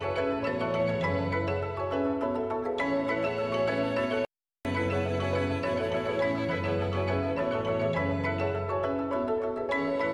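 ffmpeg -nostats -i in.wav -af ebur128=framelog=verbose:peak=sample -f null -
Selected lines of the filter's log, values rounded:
Integrated loudness:
  I:         -29.4 LUFS
  Threshold: -39.4 LUFS
Loudness range:
  LRA:         0.6 LU
  Threshold: -49.4 LUFS
  LRA low:   -29.7 LUFS
  LRA high:  -29.1 LUFS
Sample peak:
  Peak:      -18.0 dBFS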